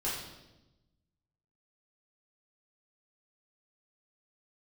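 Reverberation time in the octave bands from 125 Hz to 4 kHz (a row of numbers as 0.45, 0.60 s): 1.6, 1.4, 1.1, 0.90, 0.85, 0.90 s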